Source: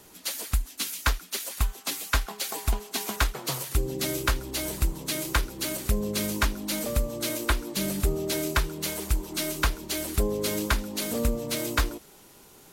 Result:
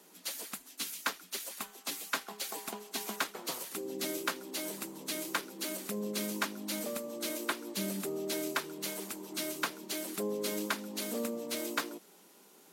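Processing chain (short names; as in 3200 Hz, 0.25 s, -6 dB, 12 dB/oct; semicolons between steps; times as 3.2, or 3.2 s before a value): elliptic high-pass 180 Hz, stop band 40 dB; gain -6 dB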